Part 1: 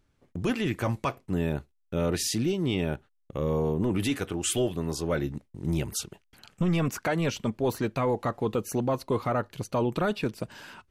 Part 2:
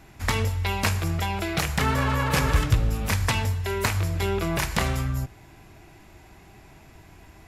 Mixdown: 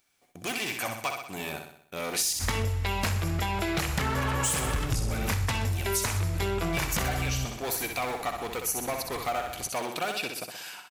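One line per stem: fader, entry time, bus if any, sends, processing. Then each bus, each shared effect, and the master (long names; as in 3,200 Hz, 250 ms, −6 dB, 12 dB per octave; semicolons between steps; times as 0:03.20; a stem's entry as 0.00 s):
−2.0 dB, 0.00 s, muted 0:02.33–0:04.22, no send, echo send −6 dB, hard clipping −23 dBFS, distortion −16 dB; spectral tilt +4.5 dB per octave; hollow resonant body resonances 730/2,300 Hz, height 12 dB
+2.5 dB, 2.20 s, no send, echo send −12.5 dB, asymmetric clip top −20 dBFS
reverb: not used
echo: repeating echo 63 ms, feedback 51%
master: downward compressor 6 to 1, threshold −25 dBFS, peak gain reduction 11 dB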